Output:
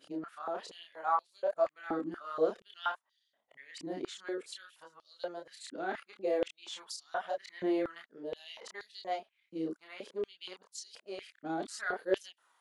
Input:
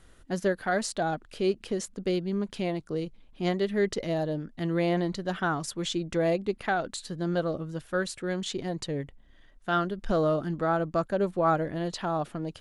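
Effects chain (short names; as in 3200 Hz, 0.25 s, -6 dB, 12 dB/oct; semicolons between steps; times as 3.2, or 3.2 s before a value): whole clip reversed; chorus voices 2, 0.62 Hz, delay 29 ms, depth 2.6 ms; stepped high-pass 4.2 Hz 290–4400 Hz; gain -8 dB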